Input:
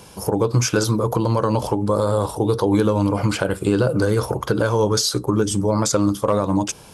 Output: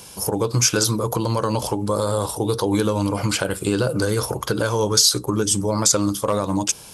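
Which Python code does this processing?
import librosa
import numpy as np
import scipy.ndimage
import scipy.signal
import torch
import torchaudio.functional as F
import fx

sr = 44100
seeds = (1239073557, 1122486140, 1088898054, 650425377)

y = fx.high_shelf(x, sr, hz=2700.0, db=11.0)
y = y * 10.0 ** (-3.0 / 20.0)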